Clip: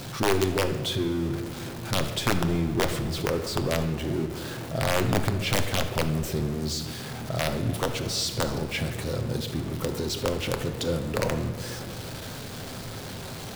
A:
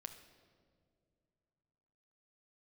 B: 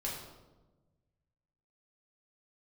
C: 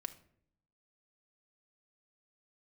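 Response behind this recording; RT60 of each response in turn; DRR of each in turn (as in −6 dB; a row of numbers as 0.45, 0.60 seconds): A; non-exponential decay, 1.2 s, 0.65 s; 6.5, −4.5, 7.0 decibels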